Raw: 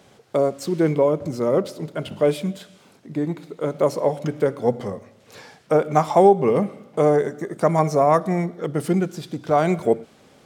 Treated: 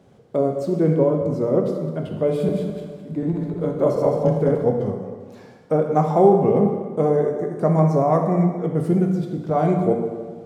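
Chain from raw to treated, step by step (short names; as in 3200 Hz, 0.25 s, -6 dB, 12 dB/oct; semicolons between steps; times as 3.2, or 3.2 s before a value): 2.28–4.63 regenerating reverse delay 0.105 s, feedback 54%, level -1.5 dB; tilt shelf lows +7.5 dB, about 900 Hz; plate-style reverb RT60 1.6 s, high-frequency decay 0.75×, DRR 2.5 dB; gain -5.5 dB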